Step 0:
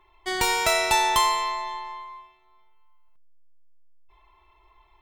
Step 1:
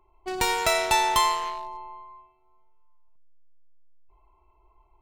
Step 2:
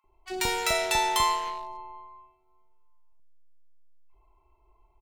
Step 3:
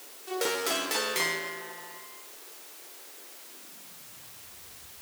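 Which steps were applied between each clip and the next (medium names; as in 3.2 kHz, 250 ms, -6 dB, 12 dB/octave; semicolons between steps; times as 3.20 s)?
local Wiener filter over 25 samples
bands offset in time highs, lows 40 ms, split 1.1 kHz; trim -1.5 dB
full-wave rectifier; word length cut 8-bit, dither triangular; high-pass sweep 380 Hz -> 74 Hz, 3.35–4.56 s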